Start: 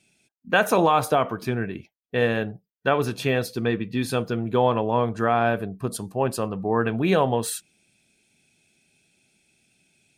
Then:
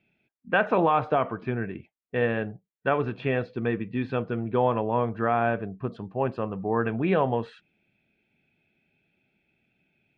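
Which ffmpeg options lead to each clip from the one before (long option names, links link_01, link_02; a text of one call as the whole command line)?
ffmpeg -i in.wav -af "lowpass=frequency=2700:width=0.5412,lowpass=frequency=2700:width=1.3066,volume=-3dB" out.wav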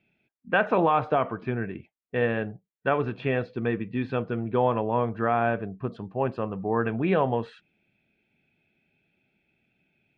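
ffmpeg -i in.wav -af anull out.wav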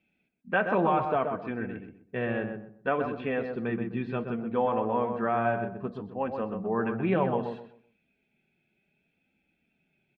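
ffmpeg -i in.wav -filter_complex "[0:a]acrossover=split=3700[link_01][link_02];[link_02]acompressor=threshold=-60dB:ratio=4:attack=1:release=60[link_03];[link_01][link_03]amix=inputs=2:normalize=0,flanger=delay=3.8:depth=1.6:regen=-35:speed=0.64:shape=sinusoidal,asplit=2[link_04][link_05];[link_05]adelay=127,lowpass=frequency=1400:poles=1,volume=-5dB,asplit=2[link_06][link_07];[link_07]adelay=127,lowpass=frequency=1400:poles=1,volume=0.28,asplit=2[link_08][link_09];[link_09]adelay=127,lowpass=frequency=1400:poles=1,volume=0.28,asplit=2[link_10][link_11];[link_11]adelay=127,lowpass=frequency=1400:poles=1,volume=0.28[link_12];[link_06][link_08][link_10][link_12]amix=inputs=4:normalize=0[link_13];[link_04][link_13]amix=inputs=2:normalize=0" out.wav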